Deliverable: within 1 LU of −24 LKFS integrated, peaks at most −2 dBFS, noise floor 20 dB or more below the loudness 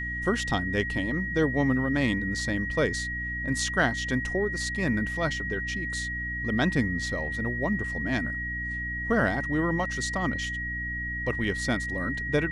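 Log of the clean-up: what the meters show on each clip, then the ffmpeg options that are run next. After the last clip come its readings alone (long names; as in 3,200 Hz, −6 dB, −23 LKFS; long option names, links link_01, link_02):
mains hum 60 Hz; hum harmonics up to 300 Hz; level of the hum −34 dBFS; interfering tone 1,900 Hz; level of the tone −31 dBFS; integrated loudness −27.5 LKFS; sample peak −11.0 dBFS; target loudness −24.0 LKFS
→ -af "bandreject=frequency=60:width_type=h:width=6,bandreject=frequency=120:width_type=h:width=6,bandreject=frequency=180:width_type=h:width=6,bandreject=frequency=240:width_type=h:width=6,bandreject=frequency=300:width_type=h:width=6"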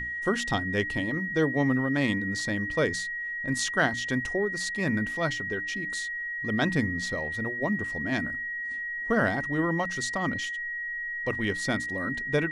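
mains hum none found; interfering tone 1,900 Hz; level of the tone −31 dBFS
→ -af "bandreject=frequency=1900:width=30"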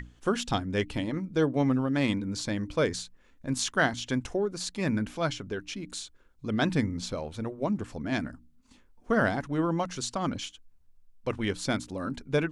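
interfering tone none found; integrated loudness −30.0 LKFS; sample peak −12.5 dBFS; target loudness −24.0 LKFS
→ -af "volume=6dB"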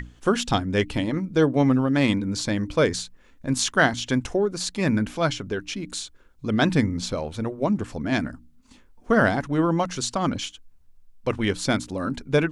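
integrated loudness −24.0 LKFS; sample peak −6.5 dBFS; background noise floor −54 dBFS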